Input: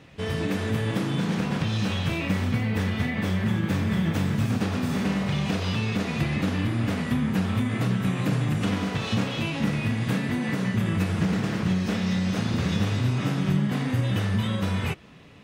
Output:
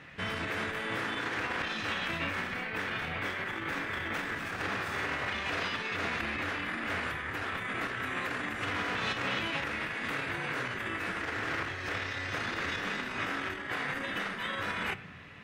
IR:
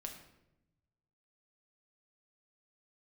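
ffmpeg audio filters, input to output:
-filter_complex "[0:a]asplit=2[link_01][link_02];[link_02]highshelf=frequency=3300:gain=-5[link_03];[1:a]atrim=start_sample=2205[link_04];[link_03][link_04]afir=irnorm=-1:irlink=0,volume=-7dB[link_05];[link_01][link_05]amix=inputs=2:normalize=0,alimiter=limit=-20dB:level=0:latency=1:release=14,equalizer=frequency=1700:width=0.9:gain=14.5,afftfilt=real='re*lt(hypot(re,im),0.282)':imag='im*lt(hypot(re,im),0.282)':win_size=1024:overlap=0.75,volume=-7.5dB"

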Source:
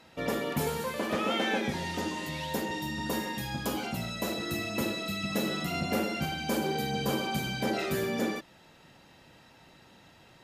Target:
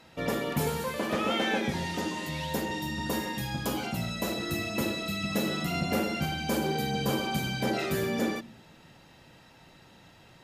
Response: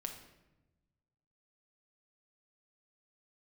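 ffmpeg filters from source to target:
-filter_complex "[0:a]asplit=2[link_01][link_02];[link_02]bass=frequency=250:gain=14,treble=frequency=4000:gain=3[link_03];[1:a]atrim=start_sample=2205[link_04];[link_03][link_04]afir=irnorm=-1:irlink=0,volume=-16.5dB[link_05];[link_01][link_05]amix=inputs=2:normalize=0"

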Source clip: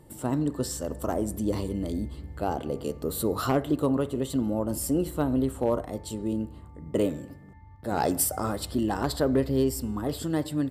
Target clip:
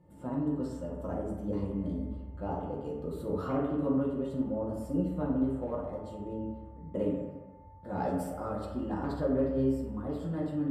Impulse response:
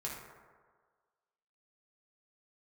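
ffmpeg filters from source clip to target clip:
-filter_complex "[0:a]lowpass=frequency=1000:poles=1[link_01];[1:a]atrim=start_sample=2205,asetrate=57330,aresample=44100[link_02];[link_01][link_02]afir=irnorm=-1:irlink=0,volume=-3.5dB"

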